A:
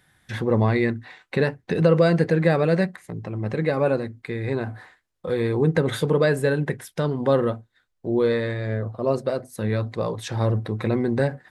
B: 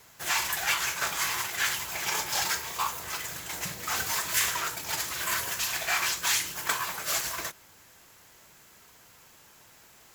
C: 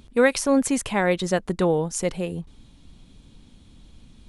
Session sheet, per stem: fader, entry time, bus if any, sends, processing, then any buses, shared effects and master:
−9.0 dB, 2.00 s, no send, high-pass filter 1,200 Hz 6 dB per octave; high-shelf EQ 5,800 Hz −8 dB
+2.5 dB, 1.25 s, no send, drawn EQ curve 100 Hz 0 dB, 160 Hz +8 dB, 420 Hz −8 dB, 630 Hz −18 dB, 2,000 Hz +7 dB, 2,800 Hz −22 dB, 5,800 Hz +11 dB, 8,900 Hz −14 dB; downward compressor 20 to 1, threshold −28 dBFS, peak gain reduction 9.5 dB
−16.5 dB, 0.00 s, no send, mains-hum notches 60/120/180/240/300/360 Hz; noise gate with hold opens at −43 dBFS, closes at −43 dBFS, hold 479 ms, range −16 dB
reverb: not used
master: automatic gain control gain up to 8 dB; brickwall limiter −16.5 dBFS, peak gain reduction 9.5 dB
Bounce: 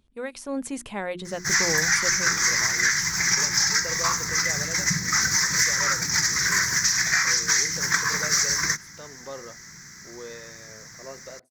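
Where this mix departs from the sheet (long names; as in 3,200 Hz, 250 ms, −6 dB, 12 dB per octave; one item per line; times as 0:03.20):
stem A −9.0 dB → −18.5 dB
stem C: missing noise gate with hold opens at −43 dBFS, closes at −43 dBFS, hold 479 ms, range −16 dB
master: missing brickwall limiter −16.5 dBFS, peak gain reduction 9.5 dB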